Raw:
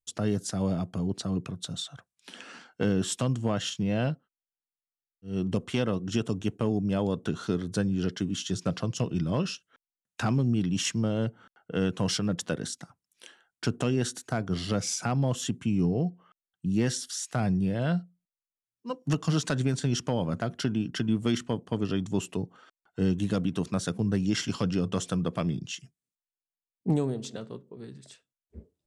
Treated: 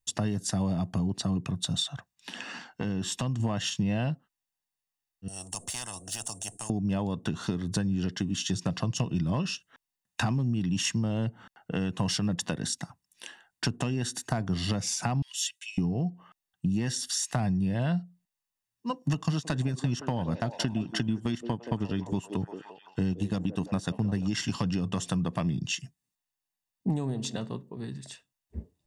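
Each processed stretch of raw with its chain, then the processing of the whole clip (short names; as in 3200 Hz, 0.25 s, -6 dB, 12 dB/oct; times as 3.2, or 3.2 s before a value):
1.89–3.4 bell 9500 Hz -7.5 dB 0.37 oct + compressor 2:1, threshold -38 dBFS
5.28–6.7 median filter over 3 samples + EQ curve 110 Hz 0 dB, 220 Hz -13 dB, 370 Hz -21 dB, 650 Hz -12 dB, 980 Hz -26 dB, 2100 Hz -29 dB, 3600 Hz -24 dB, 5600 Hz -10 dB, 9100 Hz +15 dB, 13000 Hz -17 dB + spectral compressor 10:1
15.22–15.78 inverse Chebyshev high-pass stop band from 680 Hz, stop band 60 dB + comb 3.1 ms, depth 42%
19.23–24.28 transient shaper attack +1 dB, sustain -9 dB + delay with a stepping band-pass 0.172 s, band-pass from 410 Hz, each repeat 0.7 oct, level -7.5 dB
whole clip: compressor, threshold -32 dBFS; comb 1.1 ms, depth 45%; gain +5.5 dB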